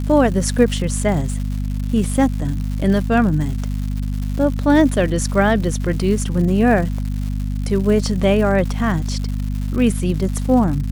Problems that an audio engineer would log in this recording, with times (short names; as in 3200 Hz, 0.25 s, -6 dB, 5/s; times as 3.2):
crackle 240/s -27 dBFS
hum 50 Hz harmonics 5 -22 dBFS